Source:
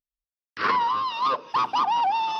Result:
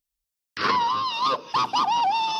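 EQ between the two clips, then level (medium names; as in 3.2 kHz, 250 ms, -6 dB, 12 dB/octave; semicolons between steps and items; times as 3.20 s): treble shelf 2.5 kHz +11.5 dB; dynamic bell 1.9 kHz, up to -5 dB, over -34 dBFS, Q 0.9; bass shelf 290 Hz +6.5 dB; 0.0 dB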